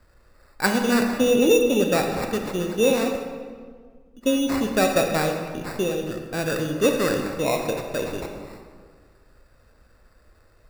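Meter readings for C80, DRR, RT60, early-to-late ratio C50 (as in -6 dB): 6.5 dB, 3.5 dB, 1.7 s, 4.5 dB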